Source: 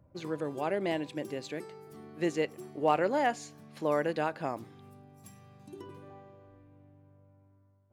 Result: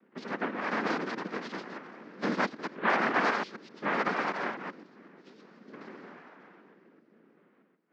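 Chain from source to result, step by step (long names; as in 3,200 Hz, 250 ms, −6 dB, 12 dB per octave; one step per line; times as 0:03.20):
delay that plays each chunk backwards 127 ms, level −4 dB
cochlear-implant simulation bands 3
elliptic band-pass filter 200–4,800 Hz, stop band 40 dB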